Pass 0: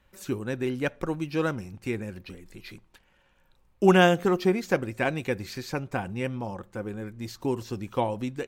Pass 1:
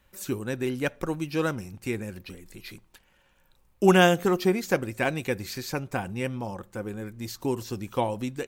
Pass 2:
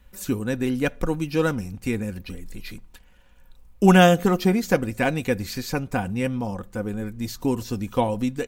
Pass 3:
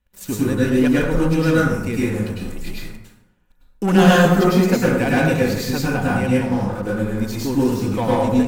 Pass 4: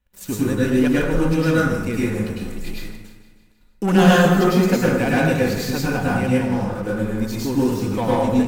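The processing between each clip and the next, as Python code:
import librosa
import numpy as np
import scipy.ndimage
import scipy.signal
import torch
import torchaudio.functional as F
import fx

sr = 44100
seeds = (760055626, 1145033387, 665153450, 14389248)

y1 = fx.high_shelf(x, sr, hz=6500.0, db=10.0)
y2 = fx.low_shelf(y1, sr, hz=140.0, db=12.0)
y2 = y2 + 0.4 * np.pad(y2, (int(4.1 * sr / 1000.0), 0))[:len(y2)]
y2 = y2 * 10.0 ** (2.0 / 20.0)
y3 = fx.leveller(y2, sr, passes=3)
y3 = fx.rev_plate(y3, sr, seeds[0], rt60_s=0.89, hf_ratio=0.55, predelay_ms=90, drr_db=-6.5)
y3 = y3 * 10.0 ** (-11.5 / 20.0)
y4 = fx.echo_feedback(y3, sr, ms=156, feedback_pct=58, wet_db=-14.0)
y4 = y4 * 10.0 ** (-1.0 / 20.0)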